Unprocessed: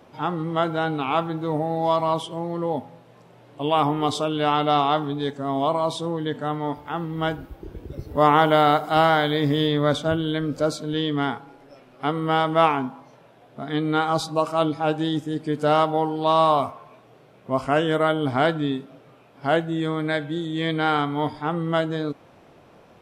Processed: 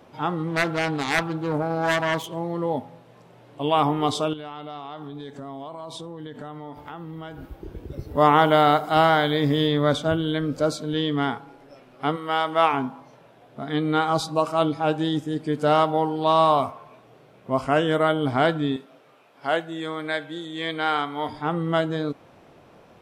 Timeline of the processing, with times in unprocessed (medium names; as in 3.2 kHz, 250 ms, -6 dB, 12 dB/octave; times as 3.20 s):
0.47–2.35 s: self-modulated delay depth 0.39 ms
4.33–7.50 s: compression 16:1, threshold -32 dBFS
12.15–12.72 s: high-pass 930 Hz -> 440 Hz 6 dB/octave
18.76–21.29 s: high-pass 600 Hz 6 dB/octave